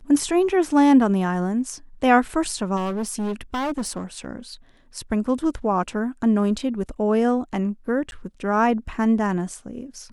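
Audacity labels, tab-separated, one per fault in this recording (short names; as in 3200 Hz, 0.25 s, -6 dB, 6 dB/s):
2.760000	4.260000	clipped -22.5 dBFS
8.110000	8.120000	gap 11 ms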